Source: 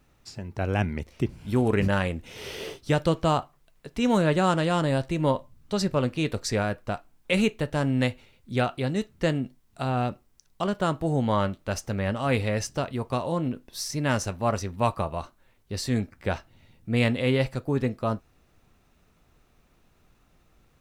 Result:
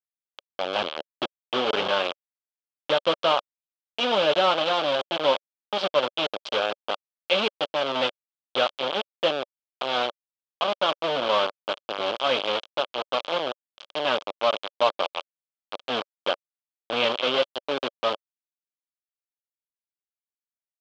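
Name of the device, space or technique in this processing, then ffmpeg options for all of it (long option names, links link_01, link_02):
hand-held game console: -filter_complex "[0:a]asplit=3[link_01][link_02][link_03];[link_01]afade=type=out:start_time=17.17:duration=0.02[link_04];[link_02]highpass=120,afade=type=in:start_time=17.17:duration=0.02,afade=type=out:start_time=17.89:duration=0.02[link_05];[link_03]afade=type=in:start_time=17.89:duration=0.02[link_06];[link_04][link_05][link_06]amix=inputs=3:normalize=0,acrusher=bits=3:mix=0:aa=0.000001,highpass=460,equalizer=frequency=570:width_type=q:width=4:gain=7,equalizer=frequency=1200:width_type=q:width=4:gain=4,equalizer=frequency=1900:width_type=q:width=4:gain=-9,equalizer=frequency=3200:width_type=q:width=4:gain=10,lowpass=frequency=4200:width=0.5412,lowpass=frequency=4200:width=1.3066"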